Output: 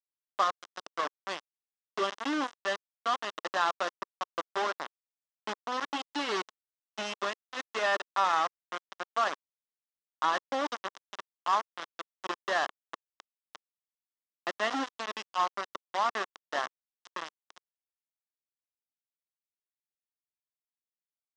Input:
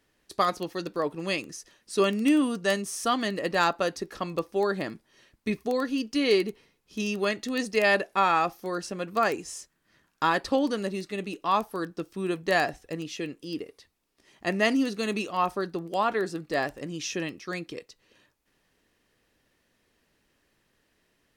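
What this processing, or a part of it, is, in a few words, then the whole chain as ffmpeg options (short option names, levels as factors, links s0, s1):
hand-held game console: -filter_complex "[0:a]asplit=3[s0][s1][s2];[s0]afade=t=out:st=5.55:d=0.02[s3];[s1]asubboost=boost=3.5:cutoff=190,afade=t=in:st=5.55:d=0.02,afade=t=out:st=7.13:d=0.02[s4];[s2]afade=t=in:st=7.13:d=0.02[s5];[s3][s4][s5]amix=inputs=3:normalize=0,acrusher=bits=3:mix=0:aa=0.000001,highpass=420,equalizer=f=450:t=q:w=4:g=-6,equalizer=f=1100:t=q:w=4:g=5,equalizer=f=2400:t=q:w=4:g=-9,equalizer=f=4400:t=q:w=4:g=-8,lowpass=f=5200:w=0.5412,lowpass=f=5200:w=1.3066,volume=0.596"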